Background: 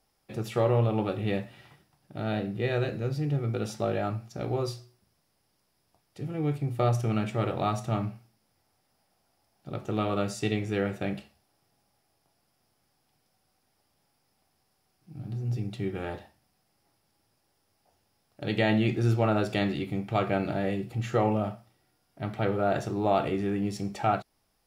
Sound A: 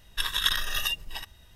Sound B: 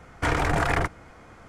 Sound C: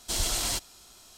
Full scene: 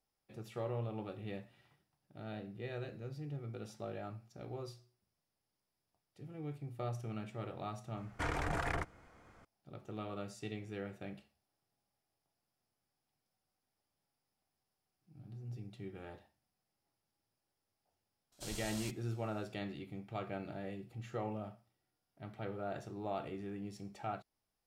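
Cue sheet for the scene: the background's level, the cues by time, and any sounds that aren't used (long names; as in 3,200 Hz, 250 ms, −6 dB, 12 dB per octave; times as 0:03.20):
background −15 dB
0:07.97: mix in B −13 dB
0:18.32: mix in C −17.5 dB
not used: A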